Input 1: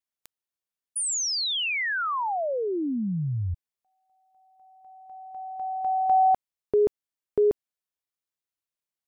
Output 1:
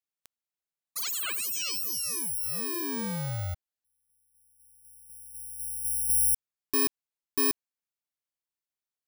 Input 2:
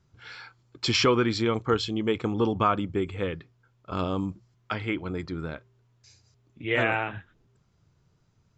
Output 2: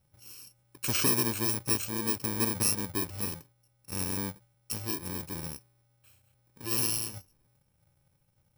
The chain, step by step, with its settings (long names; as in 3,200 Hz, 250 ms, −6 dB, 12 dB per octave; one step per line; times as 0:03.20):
samples in bit-reversed order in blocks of 64 samples
level −4.5 dB